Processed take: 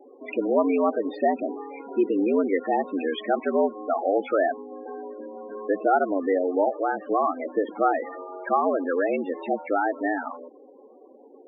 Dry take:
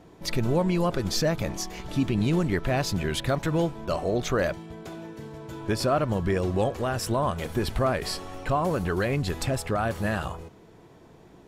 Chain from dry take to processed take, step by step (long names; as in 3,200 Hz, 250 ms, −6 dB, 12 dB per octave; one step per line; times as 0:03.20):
single-sideband voice off tune +89 Hz 180–3,100 Hz
spectral peaks only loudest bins 16
level +4 dB